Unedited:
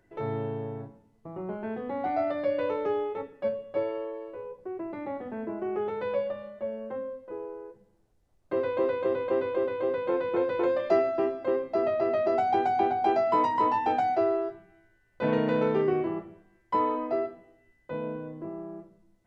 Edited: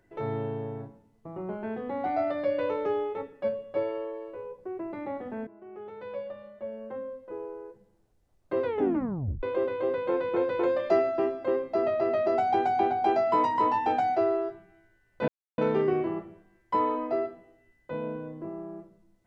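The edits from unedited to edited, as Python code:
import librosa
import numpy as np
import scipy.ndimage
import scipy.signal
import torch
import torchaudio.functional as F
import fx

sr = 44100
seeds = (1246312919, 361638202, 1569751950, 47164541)

y = fx.edit(x, sr, fx.fade_in_from(start_s=5.47, length_s=1.95, floor_db=-20.5),
    fx.tape_stop(start_s=8.65, length_s=0.78),
    fx.silence(start_s=15.28, length_s=0.3), tone=tone)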